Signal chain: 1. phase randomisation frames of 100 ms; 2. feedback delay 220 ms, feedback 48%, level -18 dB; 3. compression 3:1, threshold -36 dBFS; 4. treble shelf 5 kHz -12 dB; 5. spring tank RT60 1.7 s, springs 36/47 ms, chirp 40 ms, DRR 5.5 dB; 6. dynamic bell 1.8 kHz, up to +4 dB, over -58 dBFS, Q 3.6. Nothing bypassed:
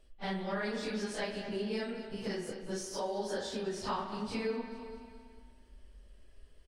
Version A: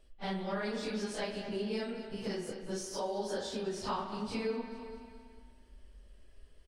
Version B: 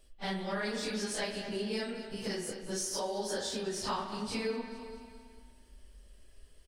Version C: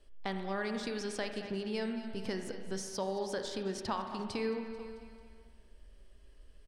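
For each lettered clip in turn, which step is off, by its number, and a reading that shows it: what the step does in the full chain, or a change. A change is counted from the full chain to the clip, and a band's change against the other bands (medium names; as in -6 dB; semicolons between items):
6, 2 kHz band -2.0 dB; 4, 8 kHz band +8.0 dB; 1, crest factor change +2.0 dB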